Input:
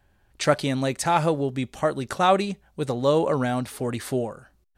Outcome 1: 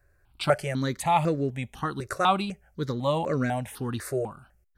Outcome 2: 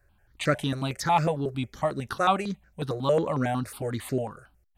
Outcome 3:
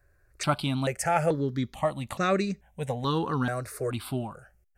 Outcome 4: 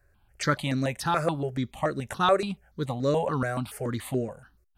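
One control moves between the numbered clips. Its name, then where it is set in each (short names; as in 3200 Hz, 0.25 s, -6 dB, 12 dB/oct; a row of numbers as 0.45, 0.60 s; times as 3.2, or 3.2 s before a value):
step phaser, rate: 4, 11, 2.3, 7 Hz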